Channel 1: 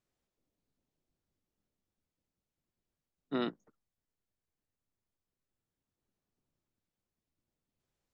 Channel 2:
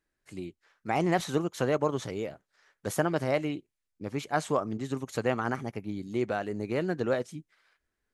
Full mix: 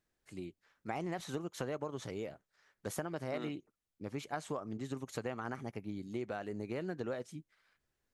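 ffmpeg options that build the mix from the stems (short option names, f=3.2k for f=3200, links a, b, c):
-filter_complex "[0:a]volume=-0.5dB[a];[1:a]acompressor=threshold=-29dB:ratio=10,volume=-5.5dB,asplit=2[b][c];[c]apad=whole_len=358690[d];[a][d]sidechaincompress=threshold=-46dB:ratio=4:attack=16:release=770[e];[e][b]amix=inputs=2:normalize=0"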